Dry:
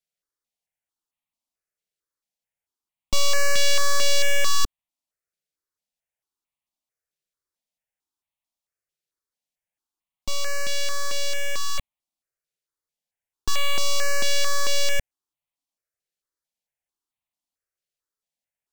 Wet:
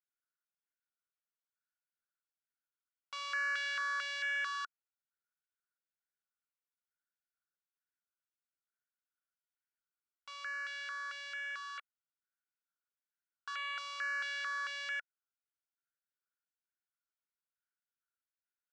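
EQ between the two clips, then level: ladder band-pass 1500 Hz, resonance 85%; 0.0 dB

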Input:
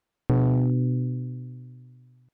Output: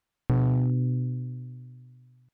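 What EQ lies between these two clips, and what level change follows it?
bell 420 Hz -6.5 dB 2 oct; 0.0 dB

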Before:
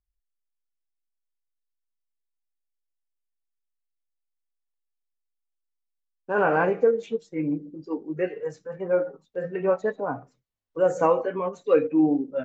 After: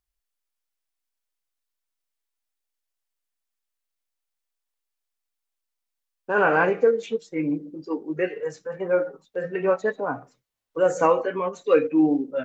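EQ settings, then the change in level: low shelf 280 Hz -10 dB; dynamic EQ 730 Hz, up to -5 dB, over -37 dBFS, Q 0.87; +7.0 dB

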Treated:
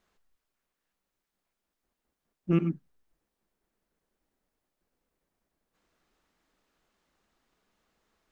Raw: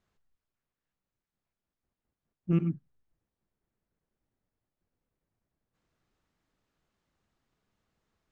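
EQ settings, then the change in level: bell 110 Hz -12 dB 1 oct; low shelf 180 Hz -3.5 dB; +6.5 dB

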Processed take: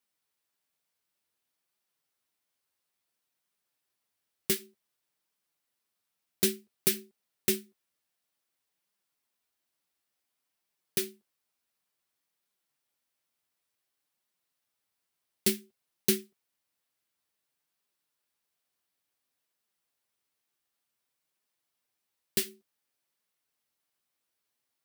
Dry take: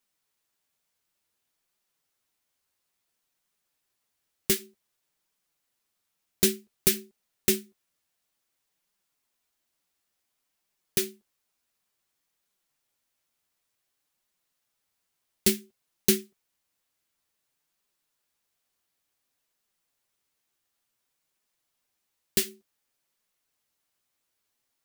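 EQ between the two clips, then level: HPF 47 Hz; low shelf 70 Hz -7 dB; bell 6800 Hz -3.5 dB 0.29 oct; -3.5 dB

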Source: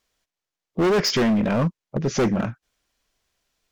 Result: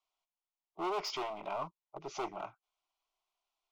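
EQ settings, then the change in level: three-band isolator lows -16 dB, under 520 Hz, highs -15 dB, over 3000 Hz; bell 120 Hz -12 dB 2.3 oct; fixed phaser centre 340 Hz, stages 8; -4.0 dB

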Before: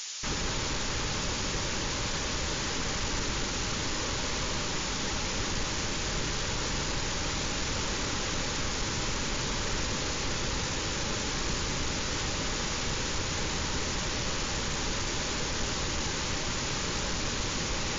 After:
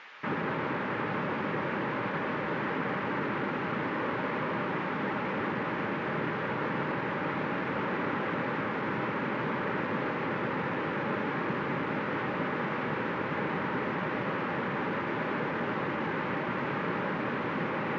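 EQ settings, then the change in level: HPF 150 Hz 24 dB/oct; LPF 2000 Hz 24 dB/oct; +4.5 dB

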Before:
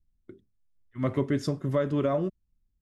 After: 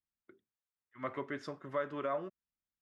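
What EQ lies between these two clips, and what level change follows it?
band-pass 1400 Hz, Q 1.1; -1.0 dB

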